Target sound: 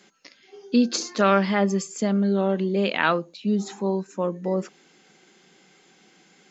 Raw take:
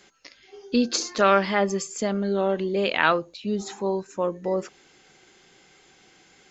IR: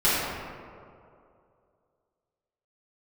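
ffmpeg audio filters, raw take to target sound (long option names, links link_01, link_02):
-af "lowshelf=frequency=130:width_type=q:width=3:gain=-11.5,volume=-1.5dB"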